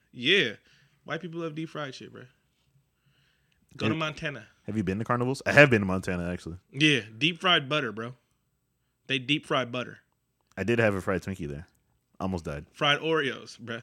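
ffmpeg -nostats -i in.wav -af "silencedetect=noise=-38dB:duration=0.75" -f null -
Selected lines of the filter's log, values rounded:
silence_start: 2.22
silence_end: 3.76 | silence_duration: 1.53
silence_start: 8.11
silence_end: 9.09 | silence_duration: 0.98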